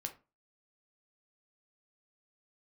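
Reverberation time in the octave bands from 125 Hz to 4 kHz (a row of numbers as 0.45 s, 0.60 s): 0.35 s, 0.35 s, 0.30 s, 0.30 s, 0.25 s, 0.20 s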